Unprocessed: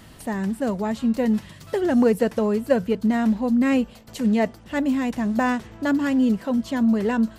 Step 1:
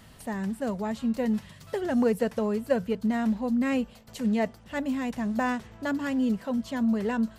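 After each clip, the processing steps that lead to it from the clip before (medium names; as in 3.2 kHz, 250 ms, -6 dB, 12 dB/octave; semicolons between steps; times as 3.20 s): peaking EQ 320 Hz -8.5 dB 0.3 oct; trim -5 dB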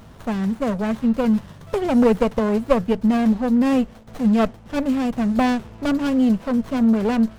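sliding maximum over 17 samples; trim +8.5 dB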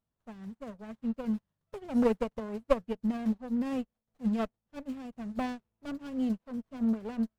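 upward expansion 2.5:1, over -36 dBFS; trim -7.5 dB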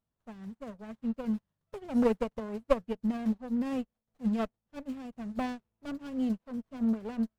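no audible change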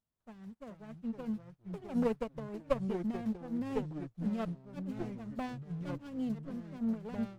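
ever faster or slower copies 349 ms, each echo -4 st, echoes 3, each echo -6 dB; trim -5.5 dB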